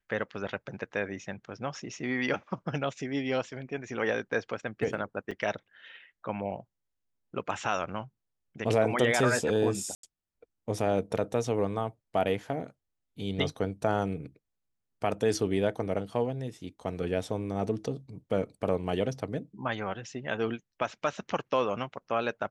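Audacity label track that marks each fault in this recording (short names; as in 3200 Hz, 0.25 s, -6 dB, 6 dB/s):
5.310000	5.320000	gap 5.7 ms
9.950000	10.030000	gap 83 ms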